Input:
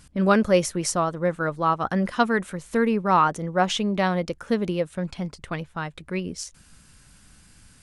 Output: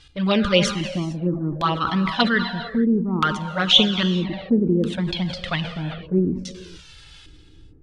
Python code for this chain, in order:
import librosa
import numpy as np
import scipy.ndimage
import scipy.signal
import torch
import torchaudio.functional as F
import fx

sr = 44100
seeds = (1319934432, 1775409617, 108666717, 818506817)

y = fx.filter_lfo_lowpass(x, sr, shape='square', hz=0.62, low_hz=330.0, high_hz=3500.0, q=3.5)
y = fx.dynamic_eq(y, sr, hz=340.0, q=1.7, threshold_db=-29.0, ratio=4.0, max_db=-3)
y = fx.rider(y, sr, range_db=4, speed_s=2.0)
y = fx.high_shelf(y, sr, hz=3700.0, db=9.5)
y = fx.rev_gated(y, sr, seeds[0], gate_ms=480, shape='flat', drr_db=9.0)
y = fx.env_flanger(y, sr, rest_ms=2.5, full_db=-12.5)
y = fx.sustainer(y, sr, db_per_s=90.0)
y = y * 10.0 ** (2.5 / 20.0)